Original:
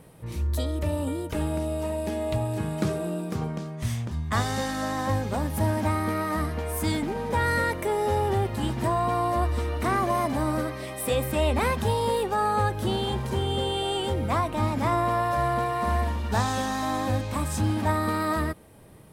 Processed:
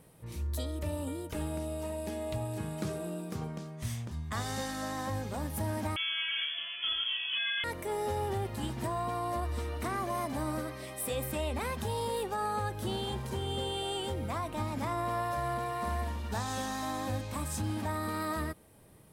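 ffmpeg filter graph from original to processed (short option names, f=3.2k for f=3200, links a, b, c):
-filter_complex "[0:a]asettb=1/sr,asplit=3[a][b][c];[a]atrim=end=5.964[d];[b]atrim=start=5.96:end=7.64,asetpts=PTS-STARTPTS,afade=t=in:d=0.004:c=qsin,afade=t=out:st=1.676:d=0.004:c=qsin,asplit=2[e][f];[f]adelay=33,volume=-2.5dB[g];[e][g]amix=inputs=2:normalize=0,atrim=end_sample=74088,lowpass=f=3k:t=q:w=0.5098,lowpass=f=3k:t=q:w=0.6013,lowpass=f=3k:t=q:w=0.9,lowpass=f=3k:t=q:w=2.563,afreqshift=-3500[h];[c]atrim=start=7.636[i];[d][h]acrossfade=d=0.004:c1=hsin:c2=qsin[j];[j][i]acrossfade=d=0.004:c1=qsin:c2=hsin,highshelf=f=4.4k:g=5.5,alimiter=limit=-16dB:level=0:latency=1:release=103,volume=-8dB"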